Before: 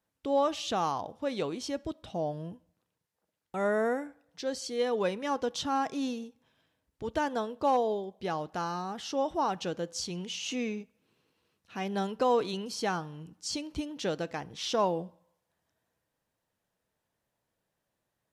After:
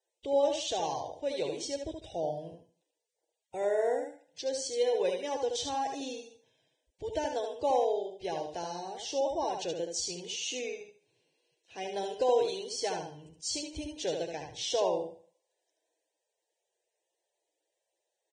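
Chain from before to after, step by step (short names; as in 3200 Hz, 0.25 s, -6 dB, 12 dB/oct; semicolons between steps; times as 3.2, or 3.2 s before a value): fixed phaser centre 520 Hz, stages 4; on a send: feedback echo 75 ms, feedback 27%, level -5 dB; on the sum: Vorbis 16 kbps 22050 Hz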